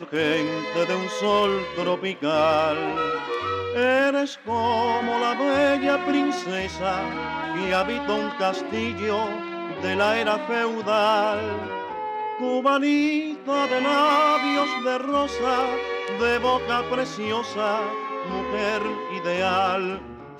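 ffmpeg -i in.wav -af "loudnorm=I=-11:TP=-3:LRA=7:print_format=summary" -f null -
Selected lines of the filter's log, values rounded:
Input Integrated:    -23.7 LUFS
Input True Peak:      -8.2 dBTP
Input LRA:             3.8 LU
Input Threshold:     -33.7 LUFS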